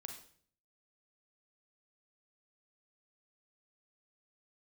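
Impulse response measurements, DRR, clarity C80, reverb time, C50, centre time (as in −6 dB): 3.5 dB, 10.0 dB, 0.55 s, 6.0 dB, 23 ms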